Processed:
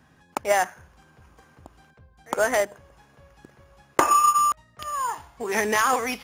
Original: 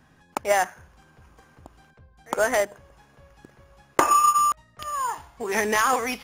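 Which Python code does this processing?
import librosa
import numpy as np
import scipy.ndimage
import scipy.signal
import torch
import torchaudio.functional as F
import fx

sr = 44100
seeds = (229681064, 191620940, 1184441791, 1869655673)

y = scipy.signal.sosfilt(scipy.signal.butter(2, 41.0, 'highpass', fs=sr, output='sos'), x)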